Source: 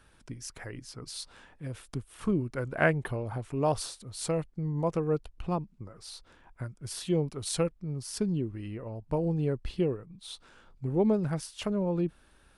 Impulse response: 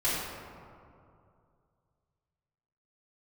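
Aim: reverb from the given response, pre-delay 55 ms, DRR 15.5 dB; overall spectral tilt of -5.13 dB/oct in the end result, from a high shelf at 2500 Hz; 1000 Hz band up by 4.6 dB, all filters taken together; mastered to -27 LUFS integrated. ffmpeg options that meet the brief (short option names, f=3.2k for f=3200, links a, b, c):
-filter_complex "[0:a]equalizer=f=1k:t=o:g=7,highshelf=f=2.5k:g=-6,asplit=2[a][b];[1:a]atrim=start_sample=2205,adelay=55[c];[b][c]afir=irnorm=-1:irlink=0,volume=-26dB[d];[a][d]amix=inputs=2:normalize=0,volume=4dB"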